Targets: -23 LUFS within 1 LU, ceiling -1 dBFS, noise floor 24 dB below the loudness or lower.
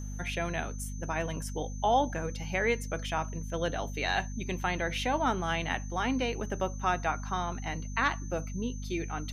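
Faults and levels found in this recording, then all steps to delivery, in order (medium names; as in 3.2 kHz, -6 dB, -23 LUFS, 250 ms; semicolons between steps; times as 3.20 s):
hum 50 Hz; highest harmonic 250 Hz; hum level -35 dBFS; steady tone 6.2 kHz; tone level -49 dBFS; loudness -32.0 LUFS; peak level -14.0 dBFS; loudness target -23.0 LUFS
-> hum notches 50/100/150/200/250 Hz; band-stop 6.2 kHz, Q 30; trim +9 dB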